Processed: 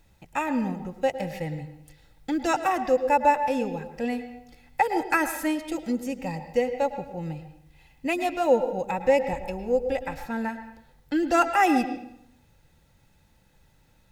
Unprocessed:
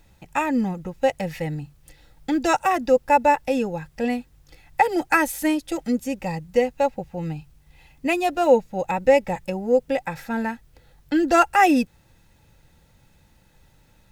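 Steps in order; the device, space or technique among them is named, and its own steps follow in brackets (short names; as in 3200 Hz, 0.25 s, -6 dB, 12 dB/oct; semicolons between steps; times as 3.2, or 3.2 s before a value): 9.33–10.26 resonant low shelf 100 Hz +13 dB, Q 1.5; filtered reverb send (on a send: HPF 150 Hz + LPF 5000 Hz + reverb RT60 0.75 s, pre-delay 0.102 s, DRR 9 dB); on the sum: gain -4.5 dB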